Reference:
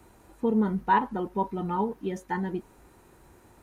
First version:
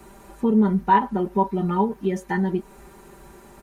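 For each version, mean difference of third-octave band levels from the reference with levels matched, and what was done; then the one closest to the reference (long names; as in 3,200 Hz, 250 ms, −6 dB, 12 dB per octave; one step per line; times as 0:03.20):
2.5 dB: comb filter 5.1 ms, depth 83%
in parallel at +2 dB: downward compressor, threshold −32 dBFS, peak gain reduction 17 dB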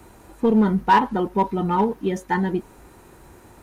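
1.0 dB: dynamic equaliser 3,500 Hz, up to +4 dB, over −46 dBFS, Q 1.1
in parallel at −11.5 dB: wave folding −22.5 dBFS
on the sum: level +6 dB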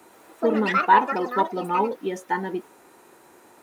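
5.5 dB: high-pass filter 320 Hz 12 dB per octave
delay with pitch and tempo change per echo 115 ms, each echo +6 semitones, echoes 3, each echo −6 dB
level +6.5 dB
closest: second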